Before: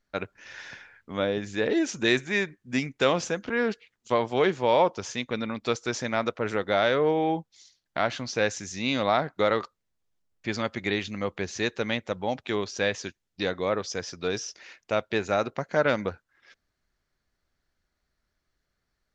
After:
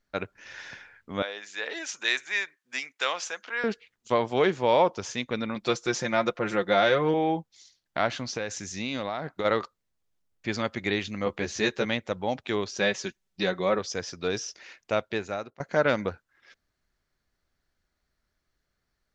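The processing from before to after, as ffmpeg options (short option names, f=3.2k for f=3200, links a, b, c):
-filter_complex "[0:a]asettb=1/sr,asplit=3[a][b][c];[a]atrim=end=1.224[d];[b]atrim=start=1.22:end=3.64,asetpts=PTS-STARTPTS,afade=t=in:d=0.004:c=qsin,afade=t=out:st=2.416:d=0.004:c=qsin,highpass=970[e];[c]atrim=start=3.636[f];[d][e]acrossfade=d=0.004:c1=hsin:c2=qsin[g];[g][f]acrossfade=d=0.004:c1=qsin:c2=hsin,asettb=1/sr,asplit=3[h][i][j];[h]atrim=end=5.554[k];[i]atrim=start=5.55:end=7.14,asetpts=PTS-STARTPTS,afade=t=in:d=0.004:c=qsin,afade=t=out:st=1.586:d=0.004:c=qsin,aecho=1:1:5.7:0.65,atrim=end_sample=70119[l];[j]atrim=start=7.136[m];[k][l]acrossfade=d=0.004:c1=hsin:c2=qsin[n];[n][m]acrossfade=d=0.004:c1=qsin:c2=hsin,asplit=3[o][p][q];[o]afade=t=out:st=8.23:d=0.02[r];[p]acompressor=threshold=-26dB:ratio=10:attack=3.2:release=140:knee=1:detection=peak,afade=t=in:st=8.23:d=0.02,afade=t=out:st=9.44:d=0.02[s];[q]afade=t=in:st=9.44:d=0.02[t];[r][s][t]amix=inputs=3:normalize=0,asettb=1/sr,asplit=3[u][v][w];[u]atrim=end=11.254[x];[v]atrim=start=11.25:end=11.85,asetpts=PTS-STARTPTS,afade=t=in:d=0.004:c=qsin,afade=t=out:st=0.596:d=0.004:c=qsin,asplit=2[y][z];[z]adelay=14,volume=-2.5dB[aa];[y][aa]amix=inputs=2:normalize=0,atrim=end_sample=26460[ab];[w]atrim=start=11.846[ac];[x][ab]acrossfade=d=0.004:c1=hsin:c2=qsin[ad];[ad][ac]acrossfade=d=0.004:c1=qsin:c2=hsin,asettb=1/sr,asplit=3[ae][af][ag];[ae]atrim=end=12.784[ah];[af]atrim=start=12.78:end=13.79,asetpts=PTS-STARTPTS,afade=t=in:d=0.004:c=qsin,afade=t=out:st=1.006:d=0.004:c=qsin,aecho=1:1:5.3:0.65,atrim=end_sample=44541[ai];[ag]atrim=start=13.786[aj];[ah][ai]acrossfade=d=0.004:c1=hsin:c2=qsin[ak];[ak][aj]acrossfade=d=0.004:c1=qsin:c2=hsin,asplit=2[al][am];[al]atrim=end=15.6,asetpts=PTS-STARTPTS,afade=t=out:st=14.94:d=0.66:silence=0.0707946[an];[am]atrim=start=15.6,asetpts=PTS-STARTPTS,afade=t=in:d=0.004:c=hsin:silence=0.0707946[ao];[an][ao]concat=n=2:v=0:a=1"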